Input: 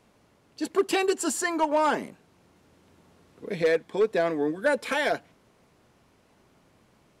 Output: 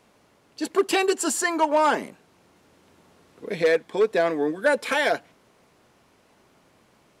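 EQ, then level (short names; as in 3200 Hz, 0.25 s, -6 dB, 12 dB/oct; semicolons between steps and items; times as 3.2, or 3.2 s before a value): low shelf 210 Hz -7.5 dB; +4.0 dB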